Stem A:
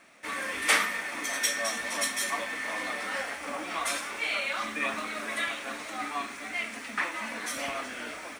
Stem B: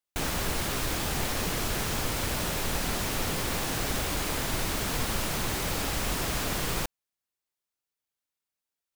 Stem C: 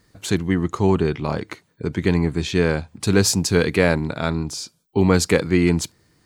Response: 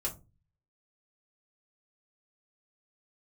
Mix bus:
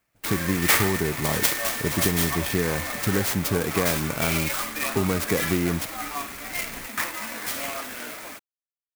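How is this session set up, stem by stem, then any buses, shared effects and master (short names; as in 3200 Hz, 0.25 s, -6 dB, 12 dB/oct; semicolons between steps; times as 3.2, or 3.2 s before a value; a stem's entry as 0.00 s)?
+1.0 dB, 0.00 s, no send, high shelf 4000 Hz +8.5 dB
-11.0 dB, 0.00 s, no send, auto duck -8 dB, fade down 0.45 s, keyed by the third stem
-1.0 dB, 0.00 s, no send, compressor, threshold -19 dBFS, peak gain reduction 9 dB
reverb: off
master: gate with hold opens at -31 dBFS; clock jitter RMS 0.059 ms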